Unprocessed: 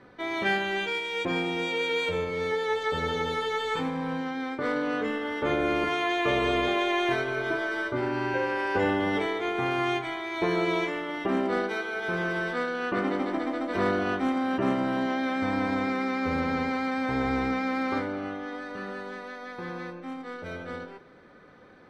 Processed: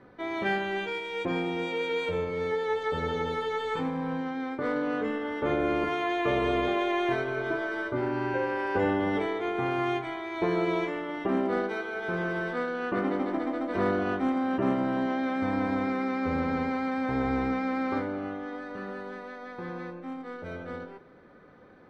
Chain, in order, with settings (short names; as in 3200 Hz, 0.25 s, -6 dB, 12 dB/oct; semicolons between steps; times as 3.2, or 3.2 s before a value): high shelf 2100 Hz -9 dB